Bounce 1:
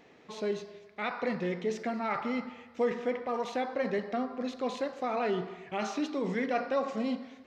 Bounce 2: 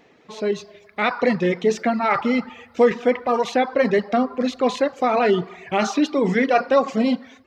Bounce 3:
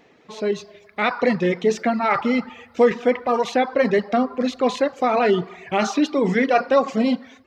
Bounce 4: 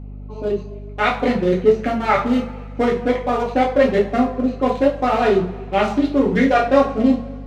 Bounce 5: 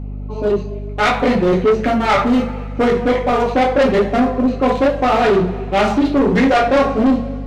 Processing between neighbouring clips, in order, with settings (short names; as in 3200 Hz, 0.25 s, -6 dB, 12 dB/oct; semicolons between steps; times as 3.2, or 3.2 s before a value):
reverb removal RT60 0.7 s; AGC gain up to 9.5 dB; gain +4 dB
nothing audible
Wiener smoothing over 25 samples; two-slope reverb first 0.33 s, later 2.1 s, from -22 dB, DRR -3.5 dB; hum 50 Hz, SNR 15 dB; gain -1 dB
soft clip -16 dBFS, distortion -10 dB; gain +7 dB